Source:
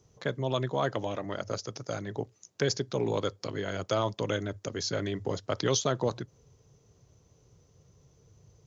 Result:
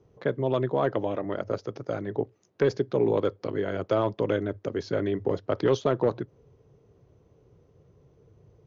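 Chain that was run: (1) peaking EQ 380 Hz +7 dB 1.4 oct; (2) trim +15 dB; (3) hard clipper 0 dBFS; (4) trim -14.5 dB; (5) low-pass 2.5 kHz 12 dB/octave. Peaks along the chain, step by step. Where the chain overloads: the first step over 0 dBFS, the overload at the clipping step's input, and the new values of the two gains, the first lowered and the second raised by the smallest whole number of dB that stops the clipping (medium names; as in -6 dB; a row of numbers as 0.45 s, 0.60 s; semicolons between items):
-11.5 dBFS, +3.5 dBFS, 0.0 dBFS, -14.5 dBFS, -14.0 dBFS; step 2, 3.5 dB; step 2 +11 dB, step 4 -10.5 dB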